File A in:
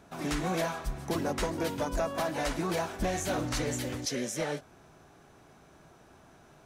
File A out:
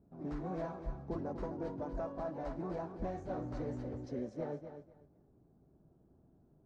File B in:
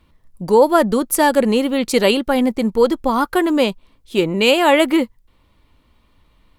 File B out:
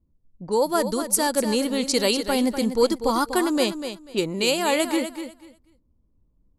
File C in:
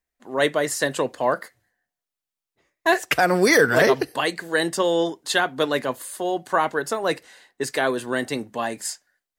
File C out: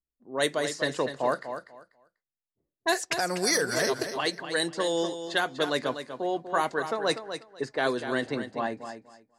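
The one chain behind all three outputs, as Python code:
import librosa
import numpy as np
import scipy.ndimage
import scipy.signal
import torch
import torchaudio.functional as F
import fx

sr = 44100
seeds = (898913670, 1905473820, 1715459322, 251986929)

p1 = fx.env_lowpass(x, sr, base_hz=320.0, full_db=-15.5)
p2 = fx.band_shelf(p1, sr, hz=6800.0, db=11.5, octaves=1.7)
p3 = fx.rider(p2, sr, range_db=4, speed_s=0.5)
p4 = p3 + fx.echo_feedback(p3, sr, ms=245, feedback_pct=20, wet_db=-9.5, dry=0)
y = F.gain(torch.from_numpy(p4), -7.5).numpy()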